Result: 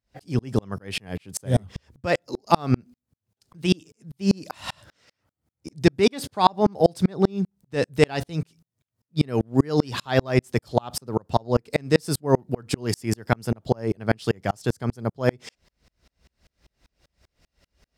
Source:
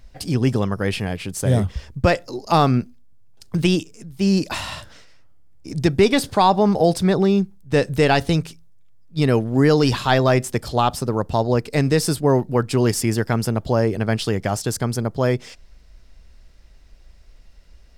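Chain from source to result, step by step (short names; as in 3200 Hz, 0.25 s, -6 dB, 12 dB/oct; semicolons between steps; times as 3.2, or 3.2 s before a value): HPF 83 Hz; dB-ramp tremolo swelling 5.1 Hz, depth 38 dB; gain +4 dB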